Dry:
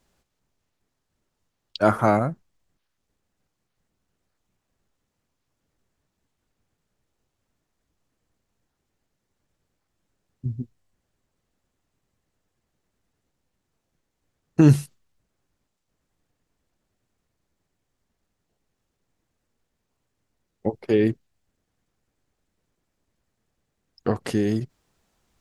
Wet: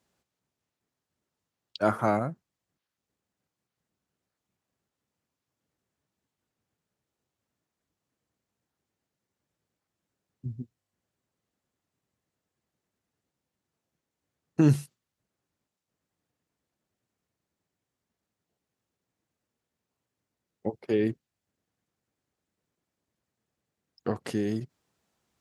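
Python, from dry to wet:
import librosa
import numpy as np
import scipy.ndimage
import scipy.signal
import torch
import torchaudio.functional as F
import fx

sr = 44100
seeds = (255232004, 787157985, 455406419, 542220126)

y = scipy.signal.sosfilt(scipy.signal.butter(2, 95.0, 'highpass', fs=sr, output='sos'), x)
y = F.gain(torch.from_numpy(y), -6.0).numpy()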